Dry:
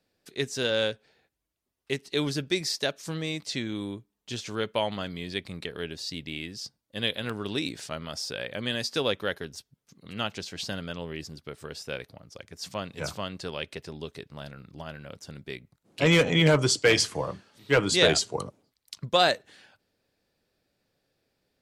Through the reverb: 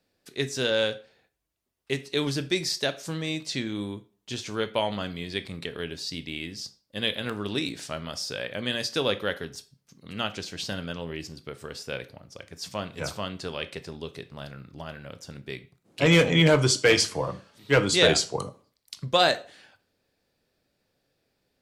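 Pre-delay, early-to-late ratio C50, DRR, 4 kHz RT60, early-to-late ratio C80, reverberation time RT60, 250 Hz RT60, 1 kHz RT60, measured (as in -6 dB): 16 ms, 17.0 dB, 11.5 dB, 0.30 s, 22.5 dB, 0.40 s, 0.35 s, 0.40 s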